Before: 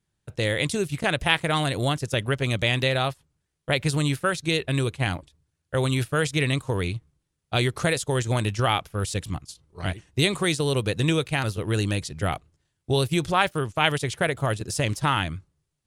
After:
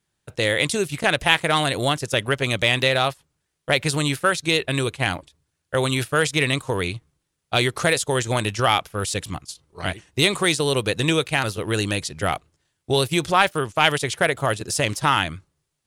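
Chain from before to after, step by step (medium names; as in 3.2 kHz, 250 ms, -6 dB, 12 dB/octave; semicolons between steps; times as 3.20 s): bass shelf 240 Hz -9.5 dB; in parallel at -4 dB: overload inside the chain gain 16.5 dB; on the sum: trim +1.5 dB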